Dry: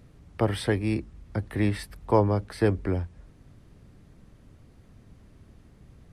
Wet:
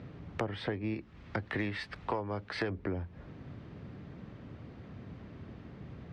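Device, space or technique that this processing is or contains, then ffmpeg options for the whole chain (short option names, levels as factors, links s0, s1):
AM radio: -filter_complex "[0:a]lowpass=6200,asettb=1/sr,asplit=3[s0][s1][s2];[s0]atrim=end=0.944[s3];[s1]atrim=start=0.94:end=2.7,asetpts=PTS-STARTPTS,afade=t=in:d=0.004:c=qsin,afade=t=out:st=1.756:d=0.004:c=qsin,tiltshelf=f=900:g=-5[s4];[s2]atrim=start=2.696[s5];[s3][s4]acrossfade=d=0.004:c1=hsin:c2=qsin[s6];[s6][s5]acrossfade=d=0.004:c1=qsin:c2=hsin,highpass=100,lowpass=3300,acompressor=threshold=0.0112:ratio=10,asoftclip=type=tanh:threshold=0.0335,volume=2.66"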